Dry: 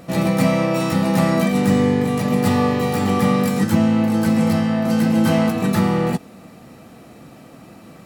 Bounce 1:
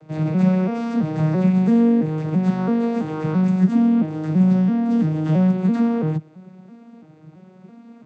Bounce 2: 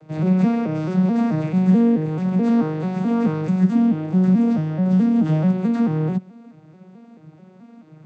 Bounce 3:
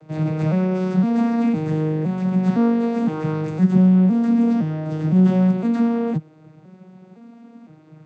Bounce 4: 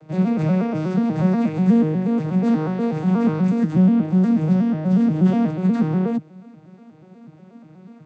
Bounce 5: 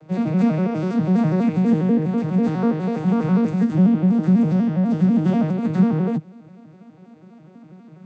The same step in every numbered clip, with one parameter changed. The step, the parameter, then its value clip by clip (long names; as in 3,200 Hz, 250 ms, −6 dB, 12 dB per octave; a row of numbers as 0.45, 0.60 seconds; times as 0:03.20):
vocoder with an arpeggio as carrier, a note every: 334, 217, 511, 121, 82 milliseconds